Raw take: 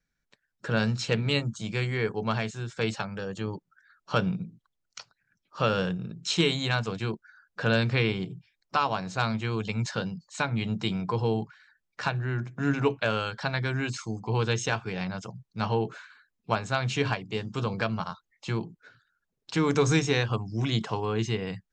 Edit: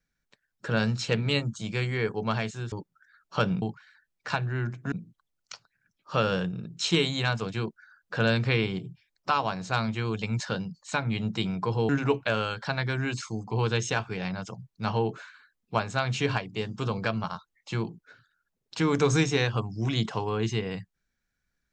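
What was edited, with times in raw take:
2.72–3.48 cut
11.35–12.65 move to 4.38

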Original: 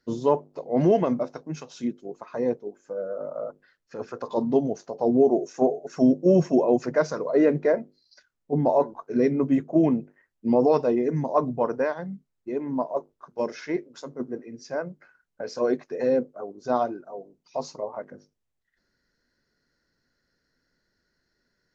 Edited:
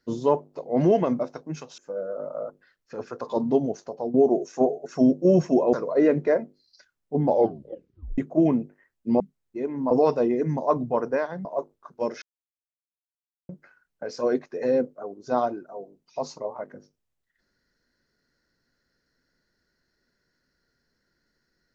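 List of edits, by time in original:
1.78–2.79 cut
4.88–5.15 fade out, to -14 dB
6.74–7.11 cut
8.65 tape stop 0.91 s
12.12–12.83 move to 10.58
13.6–14.87 mute

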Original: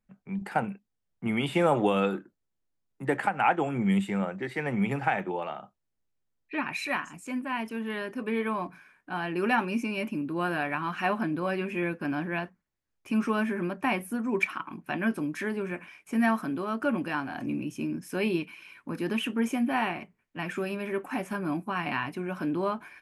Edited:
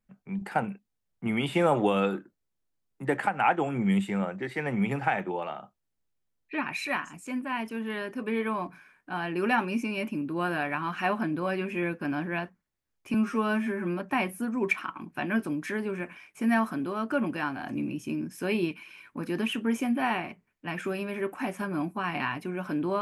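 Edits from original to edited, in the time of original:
13.14–13.71 stretch 1.5×

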